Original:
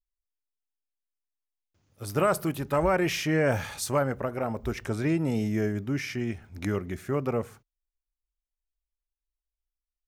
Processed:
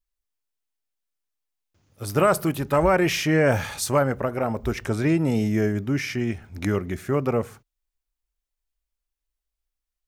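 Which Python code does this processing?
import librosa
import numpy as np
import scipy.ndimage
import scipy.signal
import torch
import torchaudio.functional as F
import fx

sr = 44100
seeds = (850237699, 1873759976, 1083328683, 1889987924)

y = x * 10.0 ** (5.0 / 20.0)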